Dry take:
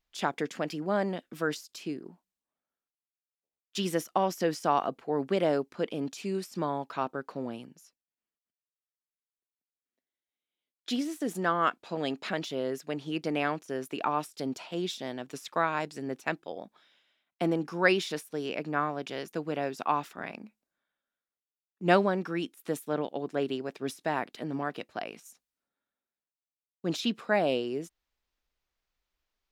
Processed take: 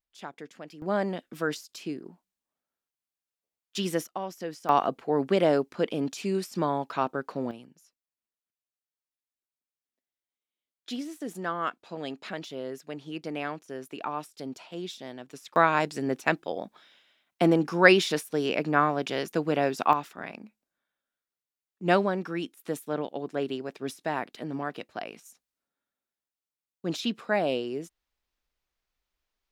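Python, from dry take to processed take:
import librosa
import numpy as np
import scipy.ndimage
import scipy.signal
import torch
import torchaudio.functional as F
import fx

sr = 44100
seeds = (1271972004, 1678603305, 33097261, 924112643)

y = fx.gain(x, sr, db=fx.steps((0.0, -11.0), (0.82, 1.0), (4.07, -7.5), (4.69, 4.0), (7.51, -4.0), (15.56, 6.5), (19.93, 0.0)))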